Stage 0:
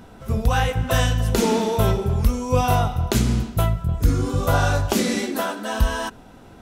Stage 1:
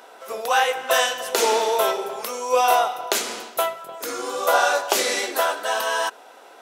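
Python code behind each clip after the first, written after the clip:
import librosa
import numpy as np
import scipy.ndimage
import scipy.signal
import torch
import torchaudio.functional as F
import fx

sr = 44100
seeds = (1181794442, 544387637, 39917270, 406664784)

y = scipy.signal.sosfilt(scipy.signal.butter(4, 470.0, 'highpass', fs=sr, output='sos'), x)
y = y * 10.0 ** (4.5 / 20.0)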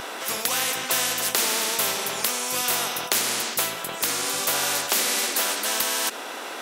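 y = fx.spectral_comp(x, sr, ratio=4.0)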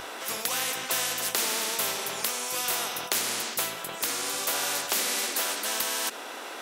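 y = fx.hum_notches(x, sr, base_hz=50, count=5)
y = y * 10.0 ** (-4.5 / 20.0)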